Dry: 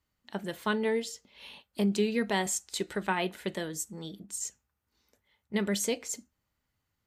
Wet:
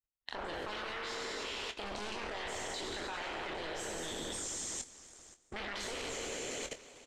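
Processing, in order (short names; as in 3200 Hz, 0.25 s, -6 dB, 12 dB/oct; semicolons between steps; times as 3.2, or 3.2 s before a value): spectral trails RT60 1.94 s; low shelf 220 Hz +11 dB; sample leveller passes 5; LPF 4600 Hz 12 dB/oct; multi-head echo 96 ms, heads first and second, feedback 56%, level -13 dB; harmonic-percussive split harmonic -17 dB; bell 170 Hz -13.5 dB 1.5 oct; level quantiser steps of 18 dB; doubler 24 ms -10 dB; reverse; compressor, threshold -33 dBFS, peak gain reduction 5 dB; reverse; warbling echo 0.247 s, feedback 42%, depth 202 cents, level -21 dB; gain -3 dB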